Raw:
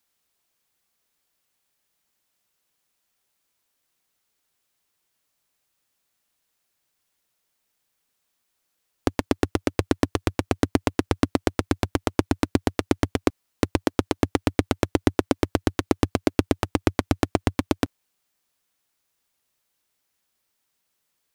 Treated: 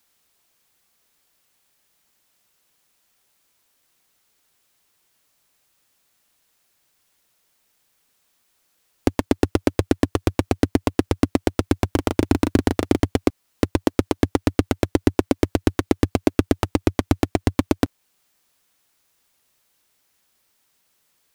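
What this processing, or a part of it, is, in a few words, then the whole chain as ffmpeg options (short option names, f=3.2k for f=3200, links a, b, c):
limiter into clipper: -filter_complex "[0:a]alimiter=limit=-7dB:level=0:latency=1:release=366,asoftclip=type=hard:threshold=-12.5dB,asettb=1/sr,asplit=3[a][b][c];[a]atrim=end=11.944[d];[b]atrim=start=11.94:end=13,asetpts=PTS-STARTPTS,afade=t=in:d=0.004:c=qsin,afade=t=out:st=1.056:d=0.004:c=qsin,asplit=2[e][f];[f]adelay=37,volume=-5dB[g];[e][g]amix=inputs=2:normalize=0,atrim=end_sample=46746[h];[c]atrim=start=12.996[i];[d][h]acrossfade=d=0.004:c1=hsin:c2=qsin[j];[j][i]acrossfade=d=0.004:c1=qsin:c2=hsin,volume=8.5dB"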